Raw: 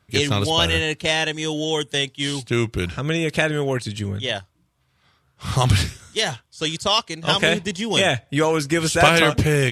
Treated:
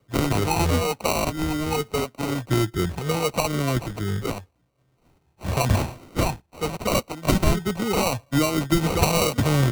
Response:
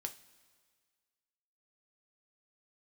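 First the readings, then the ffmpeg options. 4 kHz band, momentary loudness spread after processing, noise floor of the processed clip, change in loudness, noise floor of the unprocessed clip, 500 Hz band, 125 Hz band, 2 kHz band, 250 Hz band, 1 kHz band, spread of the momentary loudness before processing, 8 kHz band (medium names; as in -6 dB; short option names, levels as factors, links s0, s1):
-10.0 dB, 8 LU, -67 dBFS, -3.5 dB, -66 dBFS, -3.0 dB, -0.5 dB, -9.0 dB, 0.0 dB, -2.0 dB, 9 LU, -2.0 dB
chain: -filter_complex "[0:a]afftfilt=real='re*pow(10,16/40*sin(2*PI*(0.88*log(max(b,1)*sr/1024/100)/log(2)-(0.84)*(pts-256)/sr)))':imag='im*pow(10,16/40*sin(2*PI*(0.88*log(max(b,1)*sr/1024/100)/log(2)-(0.84)*(pts-256)/sr)))':win_size=1024:overlap=0.75,acrusher=samples=26:mix=1:aa=0.000001,acrossover=split=230|3000[s0][s1][s2];[s1]acompressor=threshold=0.158:ratio=6[s3];[s0][s3][s2]amix=inputs=3:normalize=0,volume=0.668"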